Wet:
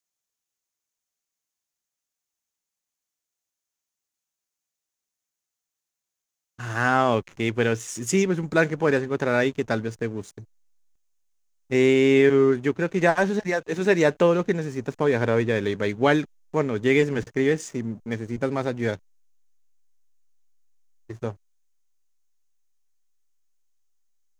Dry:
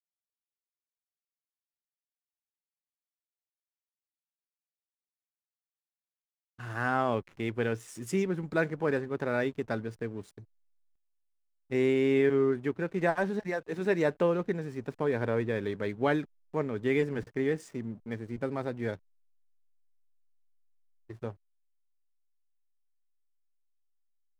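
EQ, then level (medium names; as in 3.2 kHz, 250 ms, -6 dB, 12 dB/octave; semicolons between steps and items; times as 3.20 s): peaking EQ 6.5 kHz +10.5 dB 0.43 oct; dynamic bell 3.1 kHz, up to +4 dB, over -50 dBFS, Q 1.1; +7.5 dB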